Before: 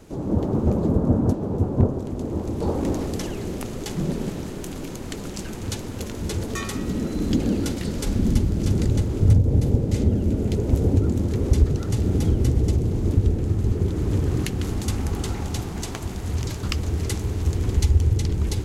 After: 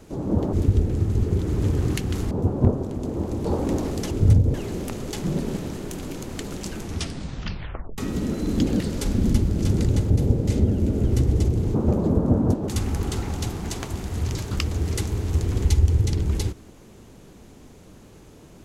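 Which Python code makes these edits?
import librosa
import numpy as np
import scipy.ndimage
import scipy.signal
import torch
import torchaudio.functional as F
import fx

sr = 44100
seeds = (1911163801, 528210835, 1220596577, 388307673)

y = fx.edit(x, sr, fx.swap(start_s=0.53, length_s=0.94, other_s=13.02, other_length_s=1.78),
    fx.tape_stop(start_s=5.53, length_s=1.18),
    fx.cut(start_s=7.53, length_s=0.28),
    fx.move(start_s=9.11, length_s=0.43, to_s=3.27),
    fx.cut(start_s=10.48, length_s=1.84), tone=tone)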